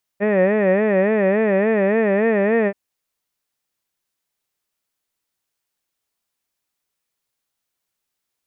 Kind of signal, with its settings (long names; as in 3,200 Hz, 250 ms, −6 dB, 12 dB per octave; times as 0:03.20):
vowel by formant synthesis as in head, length 2.53 s, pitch 197 Hz, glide +1.5 semitones, vibrato 3.5 Hz, vibrato depth 1.4 semitones